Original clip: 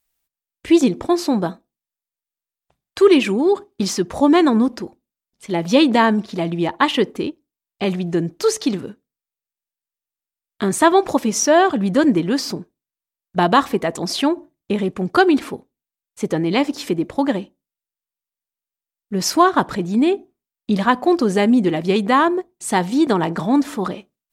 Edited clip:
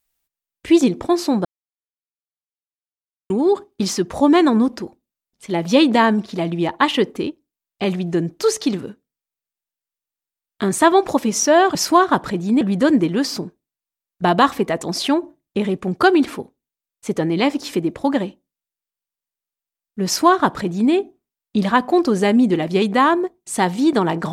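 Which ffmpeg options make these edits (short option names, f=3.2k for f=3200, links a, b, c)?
-filter_complex "[0:a]asplit=5[a][b][c][d][e];[a]atrim=end=1.45,asetpts=PTS-STARTPTS,afade=t=out:st=1.446:d=0.004:c=hsin[f];[b]atrim=start=1.45:end=3.3,asetpts=PTS-STARTPTS,volume=0[g];[c]atrim=start=3.3:end=11.752,asetpts=PTS-STARTPTS,afade=t=in:d=0.004:c=hsin[h];[d]atrim=start=19.198:end=20.062[i];[e]atrim=start=11.748[j];[f][g][h]concat=n=3:v=0:a=1[k];[k][i]acrossfade=d=0.004:c1=hsin:c2=hsin[l];[l][j]acrossfade=d=0.004:c1=hsin:c2=hsin"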